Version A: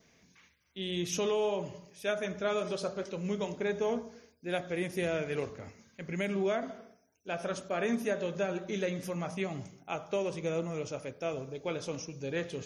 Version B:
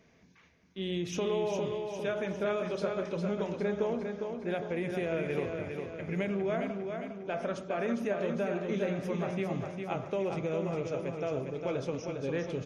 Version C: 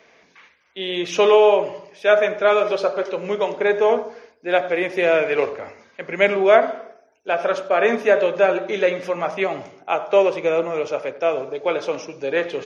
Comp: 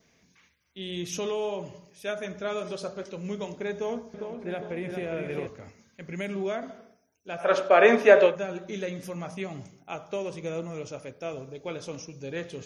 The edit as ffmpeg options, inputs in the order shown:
-filter_complex "[0:a]asplit=3[s0][s1][s2];[s0]atrim=end=4.142[s3];[1:a]atrim=start=4.138:end=5.472[s4];[s1]atrim=start=5.468:end=7.53[s5];[2:a]atrim=start=7.37:end=8.41[s6];[s2]atrim=start=8.25[s7];[s3][s4]acrossfade=d=0.004:c1=hsin:c2=hsin[s8];[s8][s5]acrossfade=d=0.004:c1=hsin:c2=hsin[s9];[s9][s6]acrossfade=d=0.16:c1=tri:c2=tri[s10];[s10][s7]acrossfade=d=0.16:c1=tri:c2=tri"

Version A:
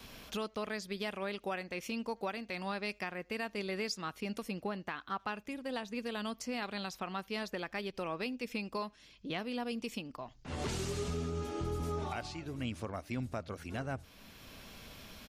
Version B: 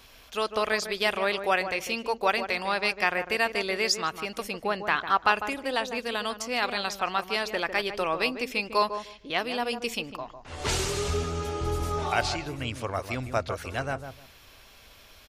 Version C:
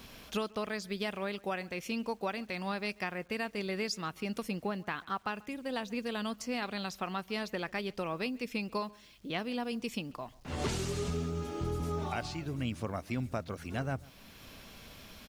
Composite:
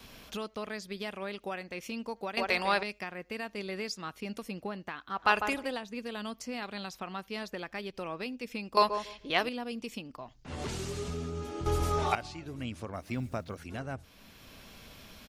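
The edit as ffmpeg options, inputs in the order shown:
-filter_complex "[1:a]asplit=4[s0][s1][s2][s3];[0:a]asplit=6[s4][s5][s6][s7][s8][s9];[s4]atrim=end=2.372[s10];[s0]atrim=start=2.368:end=2.832[s11];[s5]atrim=start=2.828:end=5.37[s12];[s1]atrim=start=5.13:end=5.79[s13];[s6]atrim=start=5.55:end=8.772[s14];[s2]atrim=start=8.768:end=9.492[s15];[s7]atrim=start=9.488:end=11.662[s16];[s3]atrim=start=11.658:end=12.152[s17];[s8]atrim=start=12.148:end=13.12[s18];[2:a]atrim=start=12.88:end=13.67[s19];[s9]atrim=start=13.43[s20];[s10][s11]acrossfade=d=0.004:c1=hsin:c2=hsin[s21];[s21][s12]acrossfade=d=0.004:c1=hsin:c2=hsin[s22];[s22][s13]acrossfade=d=0.24:c1=tri:c2=tri[s23];[s23][s14]acrossfade=d=0.24:c1=tri:c2=tri[s24];[s24][s15]acrossfade=d=0.004:c1=hsin:c2=hsin[s25];[s25][s16]acrossfade=d=0.004:c1=hsin:c2=hsin[s26];[s26][s17]acrossfade=d=0.004:c1=hsin:c2=hsin[s27];[s27][s18]acrossfade=d=0.004:c1=hsin:c2=hsin[s28];[s28][s19]acrossfade=d=0.24:c1=tri:c2=tri[s29];[s29][s20]acrossfade=d=0.24:c1=tri:c2=tri"

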